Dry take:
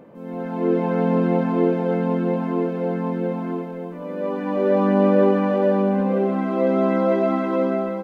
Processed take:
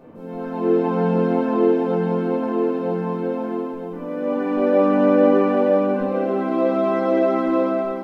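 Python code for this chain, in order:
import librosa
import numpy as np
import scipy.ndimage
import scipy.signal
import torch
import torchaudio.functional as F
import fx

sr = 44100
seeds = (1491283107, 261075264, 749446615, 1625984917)

y = fx.room_shoebox(x, sr, seeds[0], volume_m3=250.0, walls='furnished', distance_m=3.5)
y = F.gain(torch.from_numpy(y), -4.5).numpy()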